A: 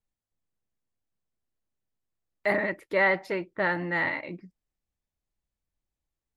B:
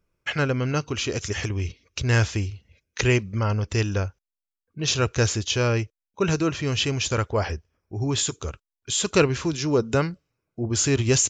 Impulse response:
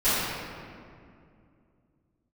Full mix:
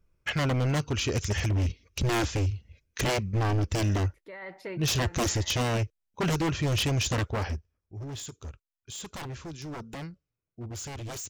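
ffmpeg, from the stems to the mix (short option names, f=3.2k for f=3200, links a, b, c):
-filter_complex "[0:a]alimiter=limit=-23.5dB:level=0:latency=1:release=66,adelay=1350,volume=-3.5dB[a];[1:a]lowshelf=f=120:g=11,aeval=exprs='0.119*(abs(mod(val(0)/0.119+3,4)-2)-1)':c=same,volume=-2.5dB,afade=t=out:st=7.14:d=0.66:silence=0.251189,asplit=2[b][c];[c]apad=whole_len=340438[d];[a][d]sidechaincompress=threshold=-40dB:ratio=4:attack=16:release=610[e];[e][b]amix=inputs=2:normalize=0"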